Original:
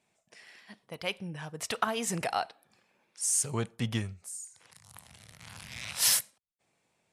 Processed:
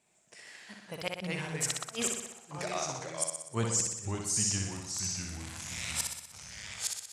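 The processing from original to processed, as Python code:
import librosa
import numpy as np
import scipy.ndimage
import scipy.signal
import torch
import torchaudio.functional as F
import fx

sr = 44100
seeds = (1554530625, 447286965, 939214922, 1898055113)

y = fx.peak_eq(x, sr, hz=7700.0, db=9.5, octaves=0.45)
y = fx.echo_pitch(y, sr, ms=105, semitones=-2, count=3, db_per_echo=-6.0)
y = fx.gate_flip(y, sr, shuts_db=-18.0, range_db=-34)
y = fx.room_flutter(y, sr, wall_m=10.6, rt60_s=0.85)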